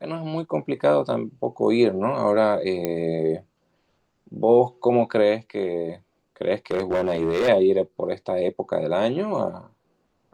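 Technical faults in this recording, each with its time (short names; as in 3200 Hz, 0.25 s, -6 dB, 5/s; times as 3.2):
2.85 pop -11 dBFS
6.71–7.49 clipped -18 dBFS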